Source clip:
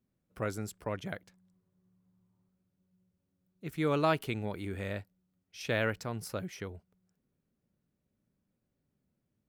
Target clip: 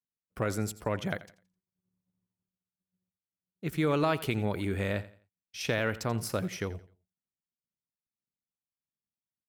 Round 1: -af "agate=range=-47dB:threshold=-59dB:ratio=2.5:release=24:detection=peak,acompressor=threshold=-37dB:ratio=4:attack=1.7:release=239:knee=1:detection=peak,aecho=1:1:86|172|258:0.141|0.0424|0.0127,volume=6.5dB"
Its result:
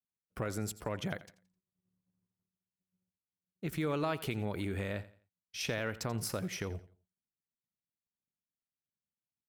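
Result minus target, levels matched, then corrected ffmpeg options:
compressor: peak gain reduction +6.5 dB
-af "agate=range=-47dB:threshold=-59dB:ratio=2.5:release=24:detection=peak,acompressor=threshold=-28.5dB:ratio=4:attack=1.7:release=239:knee=1:detection=peak,aecho=1:1:86|172|258:0.141|0.0424|0.0127,volume=6.5dB"

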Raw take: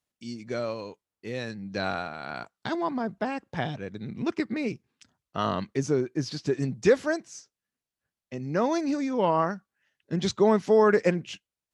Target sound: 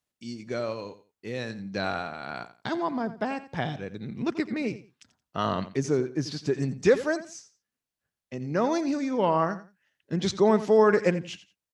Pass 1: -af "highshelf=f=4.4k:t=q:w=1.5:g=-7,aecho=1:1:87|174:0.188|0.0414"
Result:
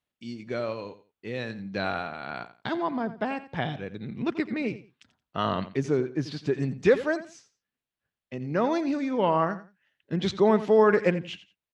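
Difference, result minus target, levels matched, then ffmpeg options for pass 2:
8000 Hz band -9.0 dB
-af "aecho=1:1:87|174:0.188|0.0414"

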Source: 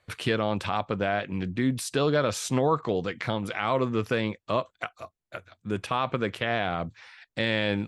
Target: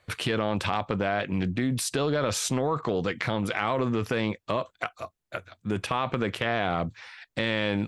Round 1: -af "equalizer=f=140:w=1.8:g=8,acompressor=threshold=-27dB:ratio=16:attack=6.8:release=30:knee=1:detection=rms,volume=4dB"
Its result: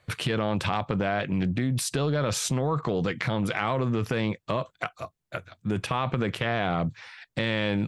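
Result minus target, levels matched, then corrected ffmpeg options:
125 Hz band +3.5 dB
-af "acompressor=threshold=-27dB:ratio=16:attack=6.8:release=30:knee=1:detection=rms,volume=4dB"

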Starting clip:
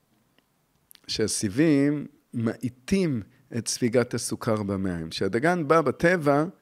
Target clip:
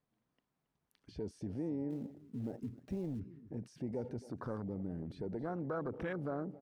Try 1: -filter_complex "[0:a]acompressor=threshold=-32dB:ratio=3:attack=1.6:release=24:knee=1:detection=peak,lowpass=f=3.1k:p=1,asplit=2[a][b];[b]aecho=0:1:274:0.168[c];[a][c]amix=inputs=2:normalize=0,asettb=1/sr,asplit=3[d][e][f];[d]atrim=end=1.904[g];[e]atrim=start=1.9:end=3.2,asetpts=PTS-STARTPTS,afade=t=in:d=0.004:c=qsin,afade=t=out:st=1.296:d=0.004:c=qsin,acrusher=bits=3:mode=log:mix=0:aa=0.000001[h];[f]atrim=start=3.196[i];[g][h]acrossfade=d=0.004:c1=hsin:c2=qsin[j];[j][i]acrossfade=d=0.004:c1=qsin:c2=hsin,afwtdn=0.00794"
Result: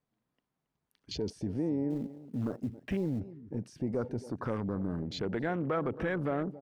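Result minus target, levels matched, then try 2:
compressor: peak gain reduction -6.5 dB
-filter_complex "[0:a]acompressor=threshold=-42dB:ratio=3:attack=1.6:release=24:knee=1:detection=peak,lowpass=f=3.1k:p=1,asplit=2[a][b];[b]aecho=0:1:274:0.168[c];[a][c]amix=inputs=2:normalize=0,asettb=1/sr,asplit=3[d][e][f];[d]atrim=end=1.904[g];[e]atrim=start=1.9:end=3.2,asetpts=PTS-STARTPTS,afade=t=in:d=0.004:c=qsin,afade=t=out:st=1.296:d=0.004:c=qsin,acrusher=bits=3:mode=log:mix=0:aa=0.000001[h];[f]atrim=start=3.196[i];[g][h]acrossfade=d=0.004:c1=hsin:c2=qsin[j];[j][i]acrossfade=d=0.004:c1=qsin:c2=hsin,afwtdn=0.00794"

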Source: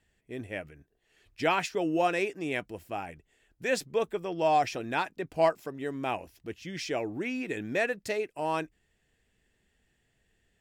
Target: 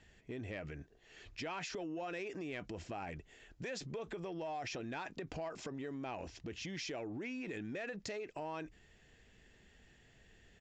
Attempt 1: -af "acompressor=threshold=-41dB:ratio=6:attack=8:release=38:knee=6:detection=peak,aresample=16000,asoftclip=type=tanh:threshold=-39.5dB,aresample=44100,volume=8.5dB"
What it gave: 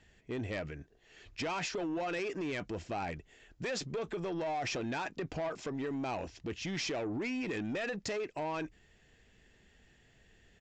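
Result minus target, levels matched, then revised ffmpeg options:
compressor: peak gain reduction -9 dB
-af "acompressor=threshold=-52dB:ratio=6:attack=8:release=38:knee=6:detection=peak,aresample=16000,asoftclip=type=tanh:threshold=-39.5dB,aresample=44100,volume=8.5dB"

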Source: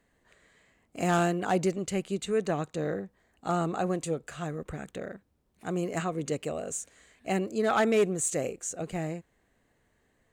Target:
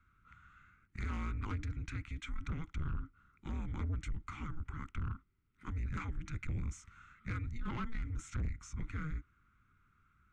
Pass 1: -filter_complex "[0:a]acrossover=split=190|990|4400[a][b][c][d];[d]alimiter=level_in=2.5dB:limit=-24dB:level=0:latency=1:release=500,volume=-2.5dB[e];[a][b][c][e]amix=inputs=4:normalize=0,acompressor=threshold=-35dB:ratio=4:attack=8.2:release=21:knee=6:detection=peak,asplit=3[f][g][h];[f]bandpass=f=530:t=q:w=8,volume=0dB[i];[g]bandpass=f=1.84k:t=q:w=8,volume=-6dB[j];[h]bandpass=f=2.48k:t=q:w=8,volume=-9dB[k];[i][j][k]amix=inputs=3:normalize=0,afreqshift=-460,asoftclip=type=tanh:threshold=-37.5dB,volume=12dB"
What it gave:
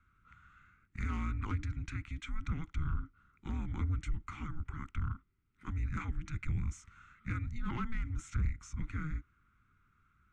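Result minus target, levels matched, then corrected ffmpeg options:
soft clip: distortion -7 dB
-filter_complex "[0:a]acrossover=split=190|990|4400[a][b][c][d];[d]alimiter=level_in=2.5dB:limit=-24dB:level=0:latency=1:release=500,volume=-2.5dB[e];[a][b][c][e]amix=inputs=4:normalize=0,acompressor=threshold=-35dB:ratio=4:attack=8.2:release=21:knee=6:detection=peak,asplit=3[f][g][h];[f]bandpass=f=530:t=q:w=8,volume=0dB[i];[g]bandpass=f=1.84k:t=q:w=8,volume=-6dB[j];[h]bandpass=f=2.48k:t=q:w=8,volume=-9dB[k];[i][j][k]amix=inputs=3:normalize=0,afreqshift=-460,asoftclip=type=tanh:threshold=-44.5dB,volume=12dB"

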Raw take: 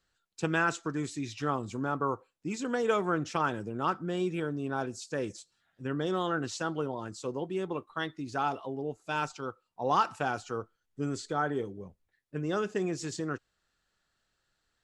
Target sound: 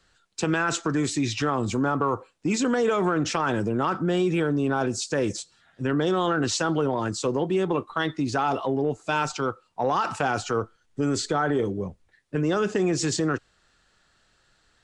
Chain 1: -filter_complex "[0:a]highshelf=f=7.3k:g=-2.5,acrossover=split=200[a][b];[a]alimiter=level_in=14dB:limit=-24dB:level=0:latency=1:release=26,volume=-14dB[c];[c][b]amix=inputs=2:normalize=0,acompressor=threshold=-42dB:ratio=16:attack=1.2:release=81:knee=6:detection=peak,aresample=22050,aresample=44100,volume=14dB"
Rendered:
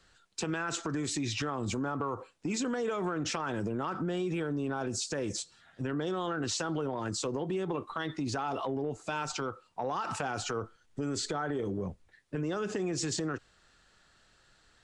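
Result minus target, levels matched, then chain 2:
compressor: peak gain reduction +10 dB
-filter_complex "[0:a]highshelf=f=7.3k:g=-2.5,acrossover=split=200[a][b];[a]alimiter=level_in=14dB:limit=-24dB:level=0:latency=1:release=26,volume=-14dB[c];[c][b]amix=inputs=2:normalize=0,acompressor=threshold=-31.5dB:ratio=16:attack=1.2:release=81:knee=6:detection=peak,aresample=22050,aresample=44100,volume=14dB"

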